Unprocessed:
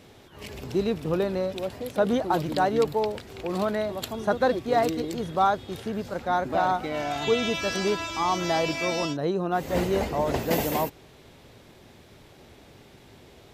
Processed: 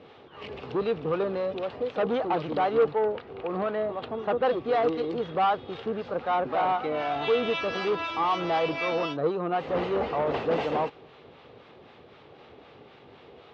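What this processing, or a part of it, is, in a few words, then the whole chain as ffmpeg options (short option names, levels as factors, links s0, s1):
guitar amplifier with harmonic tremolo: -filter_complex "[0:a]asettb=1/sr,asplit=3[s0][s1][s2];[s0]atrim=end=2.914[s3];[s1]atrim=start=2.91:end=4.45,asetpts=PTS-STARTPTS,afade=t=in:d=0.004:c=qsin,afade=t=out:st=1.536:d=0.004:c=qsin,lowpass=f=1900:p=1[s4];[s2]atrim=start=4.446[s5];[s3][s4]acrossfade=d=0.004:c1=hsin:c2=qsin[s6];[s6][s5]acrossfade=d=0.004:c1=qsin:c2=hsin,acrossover=split=750[s7][s8];[s7]aeval=exprs='val(0)*(1-0.5/2+0.5/2*cos(2*PI*3.9*n/s))':c=same[s9];[s8]aeval=exprs='val(0)*(1-0.5/2-0.5/2*cos(2*PI*3.9*n/s))':c=same[s10];[s9][s10]amix=inputs=2:normalize=0,asoftclip=type=tanh:threshold=0.0531,highpass=100,equalizer=f=110:t=q:w=4:g=-4,equalizer=f=200:t=q:w=4:g=-3,equalizer=f=470:t=q:w=4:g=8,equalizer=f=790:t=q:w=4:g=5,equalizer=f=1200:t=q:w=4:g=8,equalizer=f=2800:t=q:w=4:g=3,lowpass=f=3900:w=0.5412,lowpass=f=3900:w=1.3066,volume=1.12"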